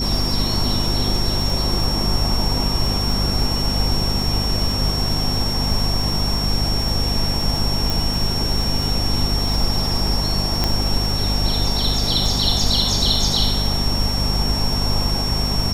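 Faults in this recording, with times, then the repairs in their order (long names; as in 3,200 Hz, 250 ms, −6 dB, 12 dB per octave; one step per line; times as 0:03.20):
surface crackle 21 per second −23 dBFS
mains hum 50 Hz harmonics 5 −24 dBFS
whistle 5,500 Hz −23 dBFS
0:07.90: click
0:10.64: click −4 dBFS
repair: click removal
hum removal 50 Hz, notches 5
notch filter 5,500 Hz, Q 30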